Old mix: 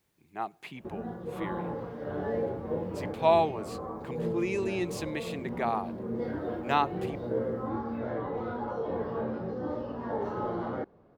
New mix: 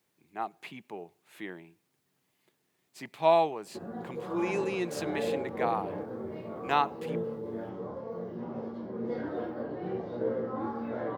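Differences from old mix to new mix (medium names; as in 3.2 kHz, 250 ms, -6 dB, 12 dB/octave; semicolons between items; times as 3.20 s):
background: entry +2.90 s; master: add Bessel high-pass 170 Hz, order 2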